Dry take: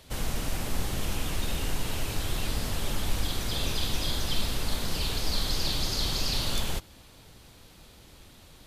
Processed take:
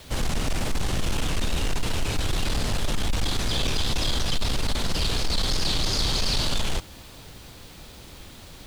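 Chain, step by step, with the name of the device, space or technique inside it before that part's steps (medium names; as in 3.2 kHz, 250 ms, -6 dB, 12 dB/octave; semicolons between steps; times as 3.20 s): compact cassette (saturation -26 dBFS, distortion -12 dB; low-pass 8.7 kHz 12 dB/octave; wow and flutter; white noise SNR 31 dB); trim +8 dB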